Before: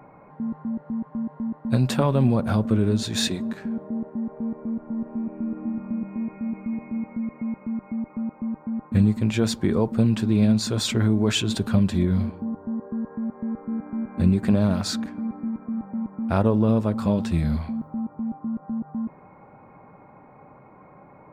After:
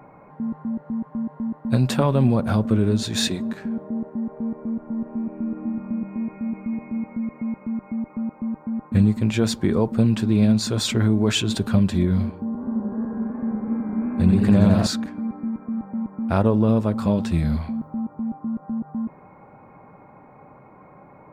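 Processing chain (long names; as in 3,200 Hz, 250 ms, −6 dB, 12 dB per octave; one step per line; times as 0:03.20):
0:12.46–0:14.87: feedback echo with a swinging delay time 87 ms, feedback 79%, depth 127 cents, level −4.5 dB
level +1.5 dB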